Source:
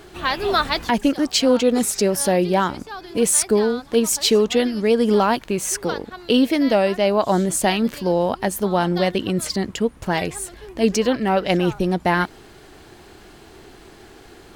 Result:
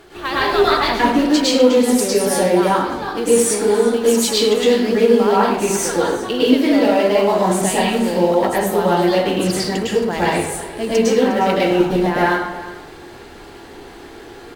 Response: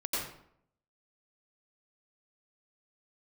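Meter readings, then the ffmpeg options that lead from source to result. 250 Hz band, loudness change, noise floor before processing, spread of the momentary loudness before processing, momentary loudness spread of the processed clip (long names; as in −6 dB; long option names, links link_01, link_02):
+3.5 dB, +3.5 dB, −46 dBFS, 7 LU, 6 LU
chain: -filter_complex "[0:a]asplit=2[link_01][link_02];[link_02]acrusher=bits=2:mode=log:mix=0:aa=0.000001,volume=-8dB[link_03];[link_01][link_03]amix=inputs=2:normalize=0,acompressor=threshold=-16dB:ratio=3,bass=frequency=250:gain=-5,treble=frequency=4000:gain=-3,aecho=1:1:357:0.15[link_04];[1:a]atrim=start_sample=2205,asetrate=36603,aresample=44100[link_05];[link_04][link_05]afir=irnorm=-1:irlink=0,volume=-2.5dB"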